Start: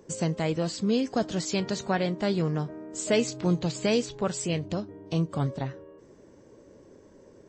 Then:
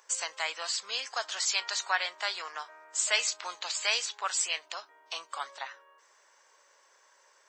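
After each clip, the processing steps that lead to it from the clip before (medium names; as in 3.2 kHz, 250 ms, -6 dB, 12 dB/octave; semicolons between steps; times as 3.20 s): high-pass 990 Hz 24 dB/octave; trim +5.5 dB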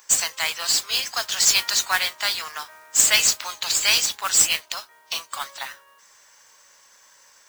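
tilt EQ +3 dB/octave; modulation noise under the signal 10 dB; trim +4.5 dB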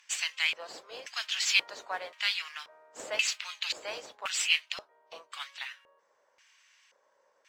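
LFO band-pass square 0.94 Hz 520–2600 Hz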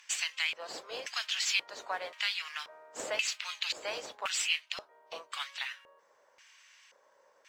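compression 2:1, threshold -38 dBFS, peak gain reduction 10.5 dB; trim +4 dB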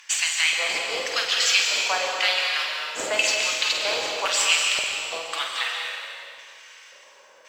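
flutter echo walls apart 8.4 m, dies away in 0.42 s; reverberation RT60 2.3 s, pre-delay 117 ms, DRR 1 dB; trim +9 dB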